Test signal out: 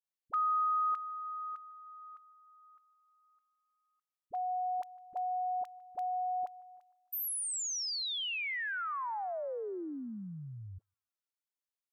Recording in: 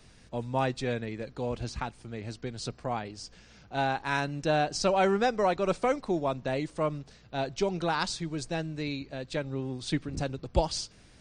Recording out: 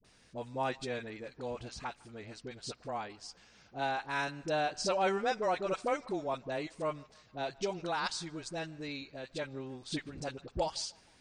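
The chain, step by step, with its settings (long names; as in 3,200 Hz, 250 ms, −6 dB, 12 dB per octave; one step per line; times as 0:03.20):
low-shelf EQ 220 Hz −11 dB
all-pass dispersion highs, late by 46 ms, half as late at 560 Hz
on a send: feedback echo with a band-pass in the loop 153 ms, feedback 65%, band-pass 1,400 Hz, level −23 dB
on the sum: level −4 dB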